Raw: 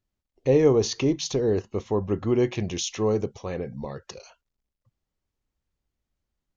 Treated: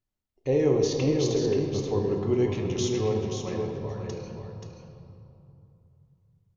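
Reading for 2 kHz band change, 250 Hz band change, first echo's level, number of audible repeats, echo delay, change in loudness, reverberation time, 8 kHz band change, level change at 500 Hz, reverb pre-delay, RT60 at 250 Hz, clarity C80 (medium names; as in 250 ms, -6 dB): -3.0 dB, -1.5 dB, -6.5 dB, 1, 530 ms, -2.0 dB, 2.9 s, no reading, -1.5 dB, 3 ms, 3.6 s, 2.0 dB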